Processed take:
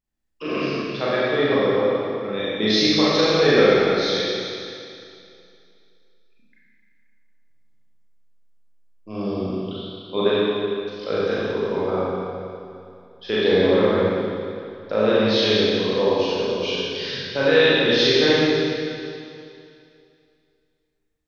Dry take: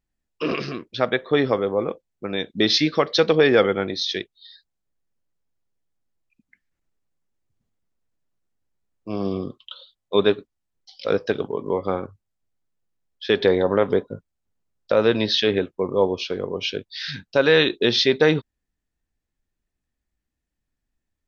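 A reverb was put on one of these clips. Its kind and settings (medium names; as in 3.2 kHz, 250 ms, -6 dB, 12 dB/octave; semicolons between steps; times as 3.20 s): Schroeder reverb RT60 2.5 s, combs from 29 ms, DRR -9 dB; trim -7.5 dB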